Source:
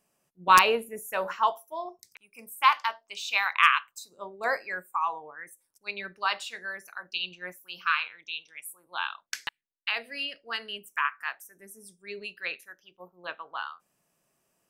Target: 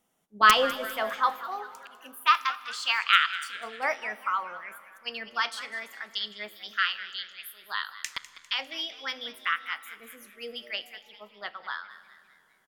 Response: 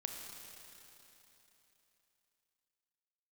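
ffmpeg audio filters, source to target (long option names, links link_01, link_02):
-filter_complex "[0:a]asplit=5[link_01][link_02][link_03][link_04][link_05];[link_02]adelay=232,afreqshift=110,volume=-15dB[link_06];[link_03]adelay=464,afreqshift=220,volume=-21.4dB[link_07];[link_04]adelay=696,afreqshift=330,volume=-27.8dB[link_08];[link_05]adelay=928,afreqshift=440,volume=-34.1dB[link_09];[link_01][link_06][link_07][link_08][link_09]amix=inputs=5:normalize=0,asplit=2[link_10][link_11];[1:a]atrim=start_sample=2205,lowpass=8900,lowshelf=frequency=270:gain=10.5[link_12];[link_11][link_12]afir=irnorm=-1:irlink=0,volume=-12dB[link_13];[link_10][link_13]amix=inputs=2:normalize=0,asetrate=51156,aresample=44100,volume=-1.5dB"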